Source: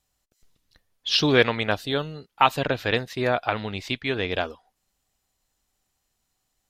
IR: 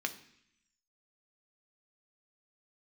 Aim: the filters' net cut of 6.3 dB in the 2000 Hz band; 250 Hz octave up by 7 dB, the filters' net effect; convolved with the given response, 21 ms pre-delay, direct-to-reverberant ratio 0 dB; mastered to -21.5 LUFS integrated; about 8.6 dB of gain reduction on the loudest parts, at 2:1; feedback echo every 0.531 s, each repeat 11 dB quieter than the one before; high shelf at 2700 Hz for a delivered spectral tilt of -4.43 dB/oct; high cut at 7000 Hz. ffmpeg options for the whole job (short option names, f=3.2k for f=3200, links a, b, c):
-filter_complex "[0:a]lowpass=7k,equalizer=f=250:t=o:g=8.5,equalizer=f=2k:t=o:g=-6.5,highshelf=f=2.7k:g=-4.5,acompressor=threshold=-28dB:ratio=2,aecho=1:1:531|1062|1593:0.282|0.0789|0.0221,asplit=2[a][b];[1:a]atrim=start_sample=2205,adelay=21[c];[b][c]afir=irnorm=-1:irlink=0,volume=-3.5dB[d];[a][d]amix=inputs=2:normalize=0,volume=5.5dB"